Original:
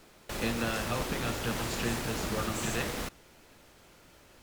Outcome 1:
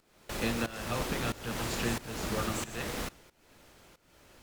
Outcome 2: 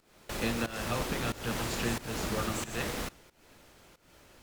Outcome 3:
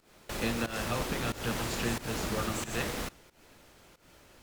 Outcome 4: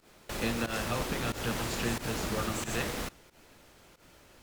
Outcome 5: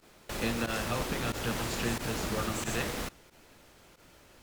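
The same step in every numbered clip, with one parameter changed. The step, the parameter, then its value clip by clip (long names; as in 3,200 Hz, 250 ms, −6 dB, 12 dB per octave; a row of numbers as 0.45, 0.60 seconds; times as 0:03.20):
fake sidechain pumping, release: 453, 286, 191, 109, 62 milliseconds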